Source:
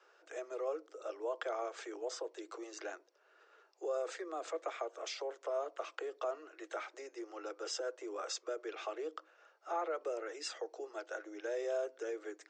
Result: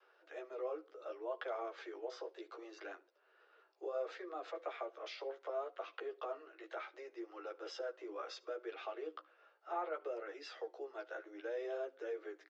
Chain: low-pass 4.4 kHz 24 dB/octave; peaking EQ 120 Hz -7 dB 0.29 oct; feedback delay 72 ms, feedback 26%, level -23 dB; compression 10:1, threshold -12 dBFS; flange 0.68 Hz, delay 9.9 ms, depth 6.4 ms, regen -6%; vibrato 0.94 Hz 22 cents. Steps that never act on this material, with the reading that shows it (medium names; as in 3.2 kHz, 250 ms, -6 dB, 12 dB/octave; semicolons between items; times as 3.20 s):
peaking EQ 120 Hz: input has nothing below 270 Hz; compression, threshold -12 dBFS: peak at its input -25.5 dBFS